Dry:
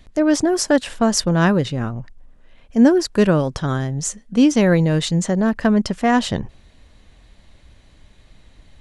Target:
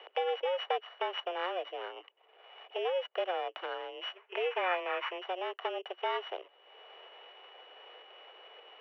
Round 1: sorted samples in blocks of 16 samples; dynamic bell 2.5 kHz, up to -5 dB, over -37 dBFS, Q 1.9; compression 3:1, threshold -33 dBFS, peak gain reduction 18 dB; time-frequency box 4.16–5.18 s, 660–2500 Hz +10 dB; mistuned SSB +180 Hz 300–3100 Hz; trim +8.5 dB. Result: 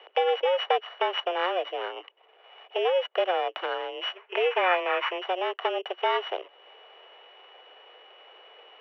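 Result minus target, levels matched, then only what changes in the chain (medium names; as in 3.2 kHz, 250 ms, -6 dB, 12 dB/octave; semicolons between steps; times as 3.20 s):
compression: peak gain reduction -8 dB
change: compression 3:1, threshold -45 dBFS, peak gain reduction 26 dB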